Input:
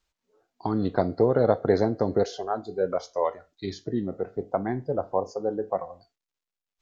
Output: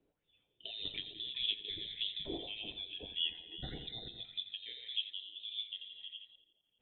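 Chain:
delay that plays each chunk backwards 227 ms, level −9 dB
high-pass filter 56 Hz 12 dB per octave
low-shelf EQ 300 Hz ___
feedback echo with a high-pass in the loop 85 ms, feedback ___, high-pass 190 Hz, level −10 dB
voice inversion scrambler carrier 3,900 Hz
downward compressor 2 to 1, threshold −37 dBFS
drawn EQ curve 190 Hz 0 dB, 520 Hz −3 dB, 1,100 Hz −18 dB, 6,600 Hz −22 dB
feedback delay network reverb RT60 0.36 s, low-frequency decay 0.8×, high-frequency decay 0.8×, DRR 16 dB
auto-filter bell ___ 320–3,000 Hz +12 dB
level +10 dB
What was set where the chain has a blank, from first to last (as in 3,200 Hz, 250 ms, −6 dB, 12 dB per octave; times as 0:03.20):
−9 dB, 58%, 1.7 Hz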